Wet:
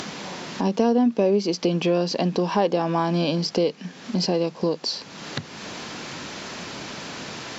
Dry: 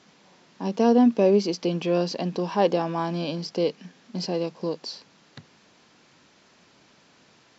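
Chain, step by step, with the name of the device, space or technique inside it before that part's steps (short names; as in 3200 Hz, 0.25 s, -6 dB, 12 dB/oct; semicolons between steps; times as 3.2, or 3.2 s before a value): upward and downward compression (upward compressor, threshold -29 dBFS; compressor 3:1, threshold -27 dBFS, peak gain reduction 10 dB); gain +8 dB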